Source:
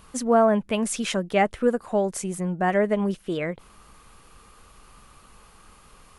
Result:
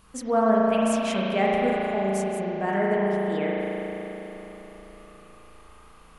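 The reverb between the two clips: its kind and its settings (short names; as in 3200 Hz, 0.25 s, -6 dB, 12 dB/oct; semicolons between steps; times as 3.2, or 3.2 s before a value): spring tank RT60 3.9 s, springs 36 ms, chirp 60 ms, DRR -5 dB; gain -6 dB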